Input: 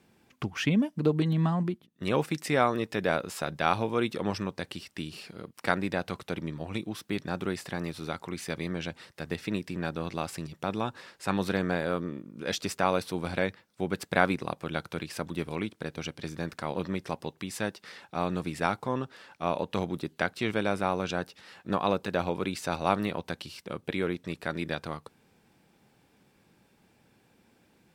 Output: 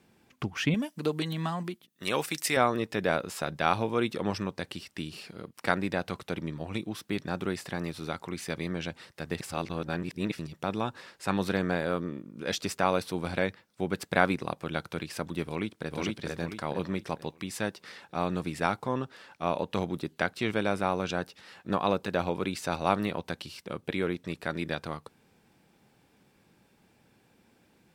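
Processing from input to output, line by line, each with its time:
0.74–2.57 s: tilt EQ +3 dB/octave
3.70–4.18 s: short-mantissa float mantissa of 8-bit
9.40–10.39 s: reverse
15.45–15.95 s: echo throw 450 ms, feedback 35%, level 0 dB

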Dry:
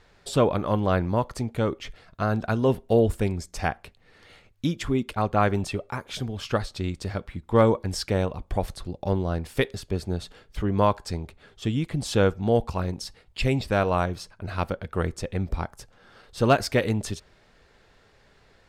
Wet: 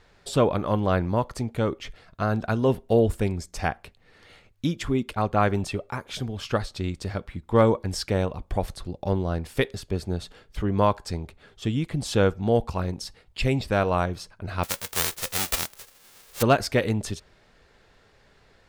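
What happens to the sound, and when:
14.63–16.41 s: formants flattened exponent 0.1

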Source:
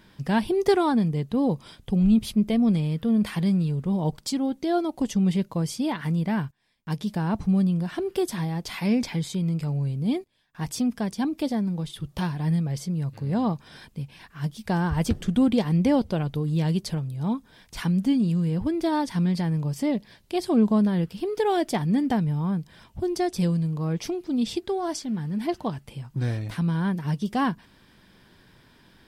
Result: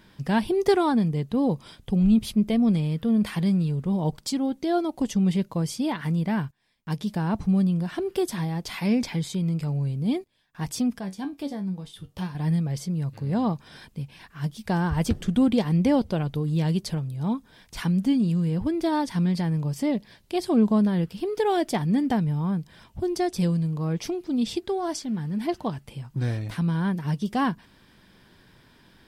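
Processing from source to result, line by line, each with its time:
10.99–12.35 s: feedback comb 94 Hz, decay 0.18 s, mix 80%

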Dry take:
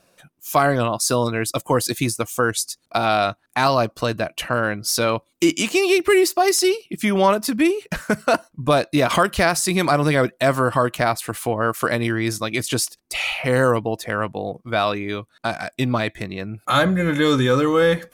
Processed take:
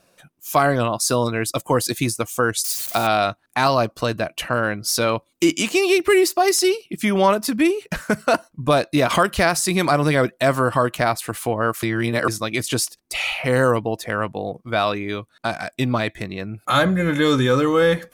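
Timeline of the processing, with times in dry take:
2.64–3.07 s: zero-crossing glitches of -20.5 dBFS
11.83–12.28 s: reverse

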